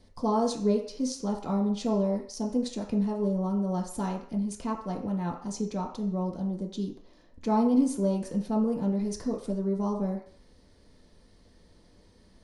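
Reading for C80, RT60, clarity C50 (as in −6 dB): 11.0 dB, 0.55 s, 7.5 dB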